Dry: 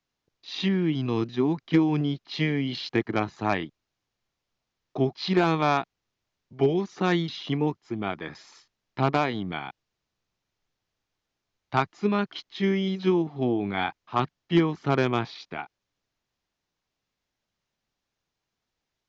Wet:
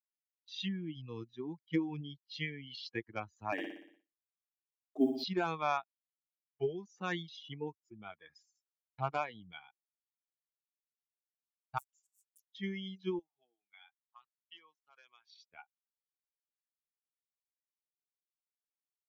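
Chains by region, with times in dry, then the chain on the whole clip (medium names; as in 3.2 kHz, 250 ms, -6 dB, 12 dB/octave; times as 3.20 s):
3.52–5.24 s: companding laws mixed up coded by mu + resonant high-pass 280 Hz, resonance Q 3.5 + flutter echo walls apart 10.2 m, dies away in 1.3 s
11.78–12.46 s: bass shelf 280 Hz -7 dB + overload inside the chain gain 31 dB + spectrum-flattening compressor 10:1
13.19–15.43 s: high-pass 1.4 kHz 6 dB/octave + compression 3:1, threshold -36 dBFS
whole clip: expander on every frequency bin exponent 2; bass shelf 470 Hz -7 dB; expander -57 dBFS; trim -5 dB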